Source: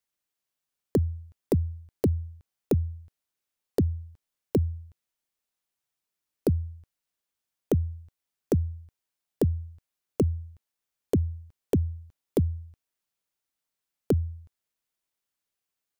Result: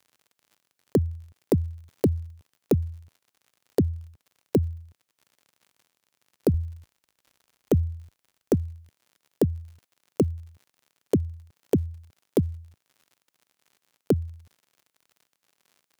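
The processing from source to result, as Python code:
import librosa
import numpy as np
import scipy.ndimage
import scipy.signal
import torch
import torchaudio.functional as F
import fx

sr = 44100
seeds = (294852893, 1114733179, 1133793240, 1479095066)

y = fx.dmg_crackle(x, sr, seeds[0], per_s=70.0, level_db=-49.0)
y = fx.highpass(y, sr, hz=fx.steps((0.0, 89.0), (6.54, 43.0), (8.54, 110.0)), slope=12)
y = y * librosa.db_to_amplitude(3.0)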